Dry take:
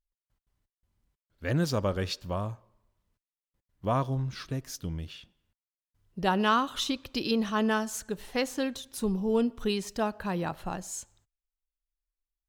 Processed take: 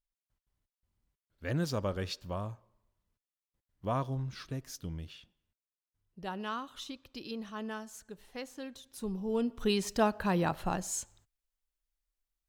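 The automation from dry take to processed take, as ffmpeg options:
-af "volume=3.16,afade=t=out:st=5.01:d=1.18:silence=0.398107,afade=t=in:st=8.61:d=0.8:silence=0.421697,afade=t=in:st=9.41:d=0.47:silence=0.421697"

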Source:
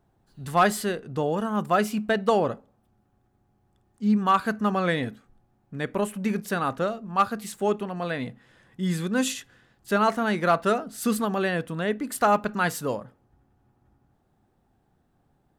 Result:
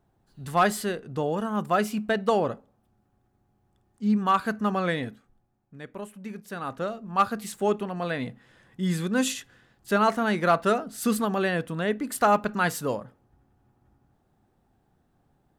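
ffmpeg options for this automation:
-af "volume=3.16,afade=t=out:st=4.79:d=1.02:silence=0.316228,afade=t=in:st=6.44:d=0.81:silence=0.266073"

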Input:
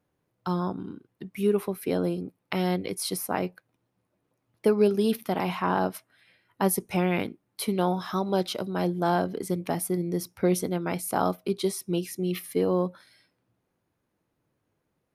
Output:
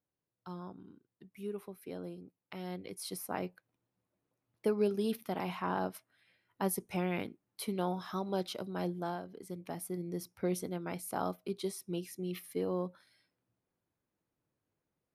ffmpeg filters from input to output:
-af "volume=0.944,afade=t=in:st=2.6:d=0.77:silence=0.421697,afade=t=out:st=8.91:d=0.31:silence=0.334965,afade=t=in:st=9.22:d=0.92:silence=0.375837"

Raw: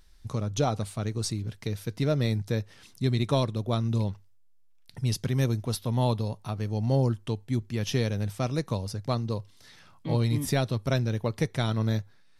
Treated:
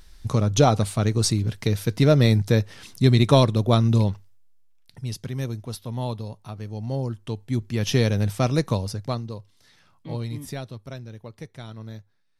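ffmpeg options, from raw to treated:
-af "volume=9.44,afade=t=out:st=3.73:d=1.29:silence=0.237137,afade=t=in:st=7.09:d=0.99:silence=0.298538,afade=t=out:st=8.64:d=0.68:silence=0.266073,afade=t=out:st=10.13:d=0.83:silence=0.446684"

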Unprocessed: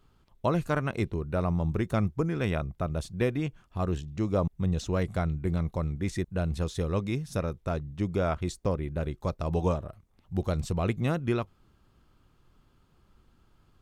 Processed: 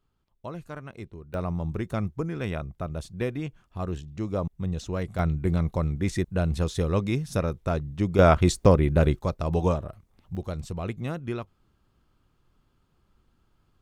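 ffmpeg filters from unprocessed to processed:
-af "asetnsamples=n=441:p=0,asendcmd='1.34 volume volume -2dB;5.19 volume volume 4dB;8.19 volume volume 11dB;9.19 volume volume 3dB;10.35 volume volume -4dB',volume=0.282"

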